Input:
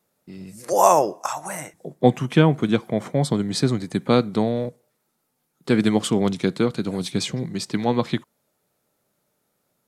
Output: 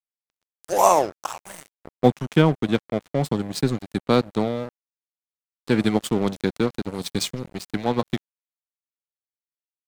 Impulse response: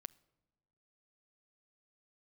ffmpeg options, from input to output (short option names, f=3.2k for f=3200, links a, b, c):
-filter_complex "[0:a]asettb=1/sr,asplit=3[a][b][c];[a]atrim=end=6.944[d];[b]atrim=start=6.94:end=7.55,asetpts=PTS-STARTPTS,afade=t=in:d=0.004:c=qsin,afade=t=out:st=0.606:d=0.004:c=qsin,highshelf=f=2.9k:g=6[e];[c]atrim=start=7.546[f];[d][e]acrossfade=d=0.004:c1=hsin:c2=qsin[g];[g][f]acrossfade=d=0.004:c1=qsin:c2=hsin,aeval=exprs='sgn(val(0))*max(abs(val(0))-0.0335,0)':c=same"